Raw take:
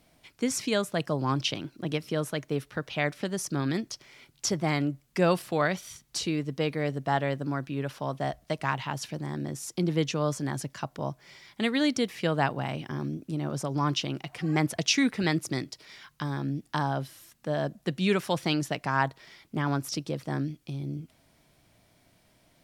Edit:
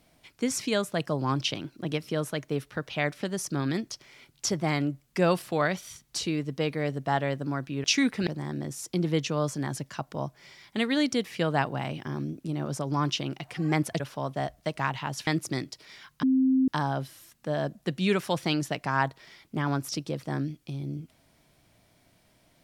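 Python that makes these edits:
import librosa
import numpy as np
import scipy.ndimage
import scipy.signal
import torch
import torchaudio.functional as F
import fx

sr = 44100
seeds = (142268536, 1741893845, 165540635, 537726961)

y = fx.edit(x, sr, fx.swap(start_s=7.84, length_s=1.27, other_s=14.84, other_length_s=0.43),
    fx.bleep(start_s=16.23, length_s=0.45, hz=262.0, db=-19.0), tone=tone)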